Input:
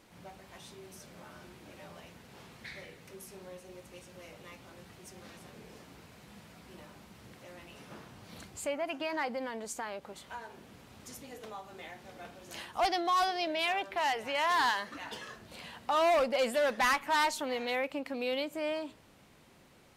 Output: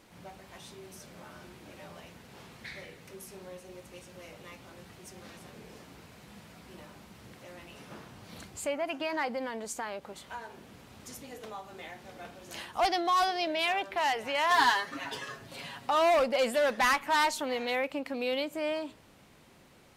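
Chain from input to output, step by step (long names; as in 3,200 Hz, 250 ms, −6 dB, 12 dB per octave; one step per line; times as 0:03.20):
0:14.50–0:15.90: comb filter 7.3 ms, depth 85%
level +2 dB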